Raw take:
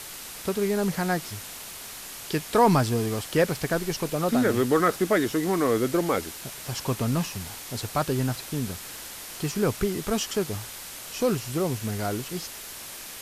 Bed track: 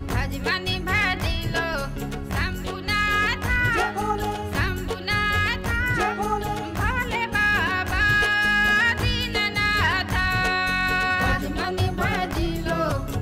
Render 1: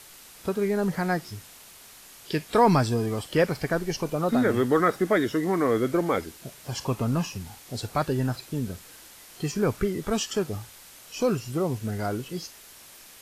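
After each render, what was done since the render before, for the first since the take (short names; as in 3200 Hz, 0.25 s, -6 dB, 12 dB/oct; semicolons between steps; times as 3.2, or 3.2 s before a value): noise print and reduce 9 dB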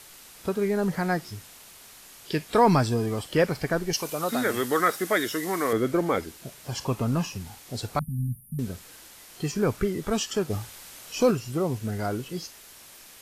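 3.93–5.73 tilt +3 dB/oct; 7.99–8.59 brick-wall FIR band-stop 250–9100 Hz; 10.5–11.31 gain +3.5 dB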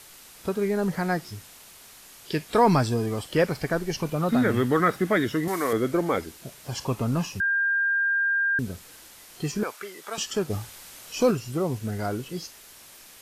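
3.93–5.48 tone controls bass +14 dB, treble -10 dB; 7.4–8.59 bleep 1600 Hz -20.5 dBFS; 9.63–10.18 HPF 790 Hz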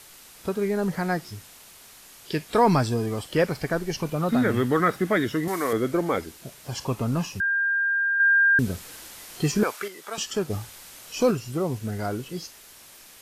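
8.2–9.88 gain +5.5 dB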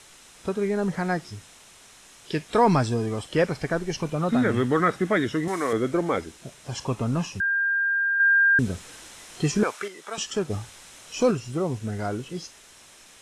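LPF 9500 Hz 24 dB/oct; notch 4600 Hz, Q 10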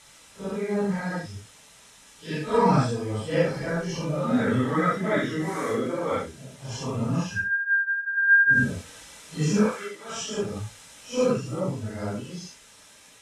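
phase scrambler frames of 0.2 s; notch comb 360 Hz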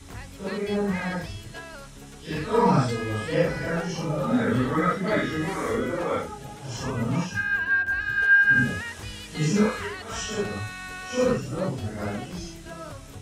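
add bed track -15 dB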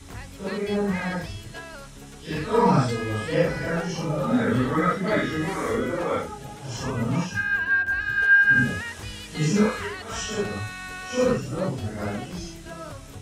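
gain +1 dB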